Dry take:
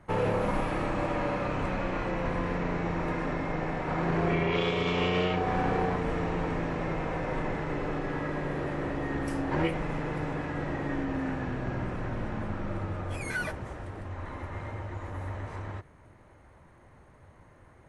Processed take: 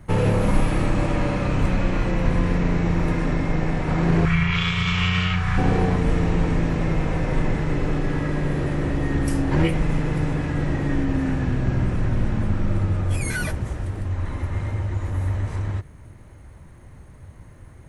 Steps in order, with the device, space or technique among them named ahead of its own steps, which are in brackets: smiley-face EQ (low shelf 190 Hz +7 dB; bell 860 Hz -7 dB 2.8 oct; high shelf 7700 Hz +8.5 dB); 4.25–5.58 EQ curve 160 Hz 0 dB, 280 Hz -21 dB, 610 Hz -15 dB, 1300 Hz +6 dB, 4000 Hz 0 dB; gain +8.5 dB

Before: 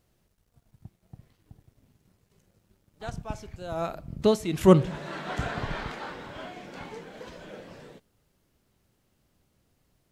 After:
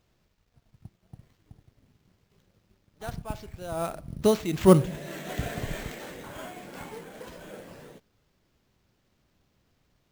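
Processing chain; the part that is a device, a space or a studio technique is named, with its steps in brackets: 4.86–6.24 band shelf 1100 Hz -9.5 dB 1.1 oct; early companding sampler (sample-rate reducer 10000 Hz, jitter 0%; companded quantiser 8-bit)

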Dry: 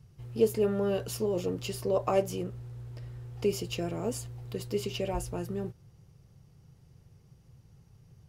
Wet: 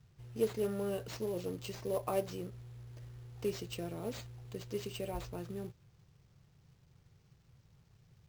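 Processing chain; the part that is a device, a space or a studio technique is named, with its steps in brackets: early companding sampler (sample-rate reducer 11000 Hz, jitter 0%; companded quantiser 6-bit); gain -7.5 dB

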